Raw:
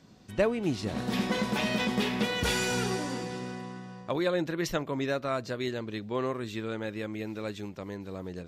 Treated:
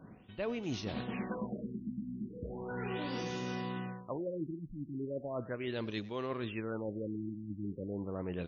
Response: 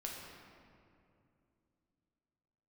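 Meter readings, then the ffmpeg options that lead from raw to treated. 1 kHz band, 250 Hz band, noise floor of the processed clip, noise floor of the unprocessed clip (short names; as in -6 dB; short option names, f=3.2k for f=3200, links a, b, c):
-9.0 dB, -6.5 dB, -52 dBFS, -46 dBFS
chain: -filter_complex "[0:a]aexciter=amount=1.3:drive=6.2:freq=2.6k,areverse,acompressor=threshold=-38dB:ratio=10,areverse,asplit=2[a][b];[b]adelay=100,highpass=300,lowpass=3.4k,asoftclip=type=hard:threshold=-37dB,volume=-17dB[c];[a][c]amix=inputs=2:normalize=0,afftfilt=real='re*lt(b*sr/1024,320*pow(6900/320,0.5+0.5*sin(2*PI*0.37*pts/sr)))':imag='im*lt(b*sr/1024,320*pow(6900/320,0.5+0.5*sin(2*PI*0.37*pts/sr)))':win_size=1024:overlap=0.75,volume=4dB"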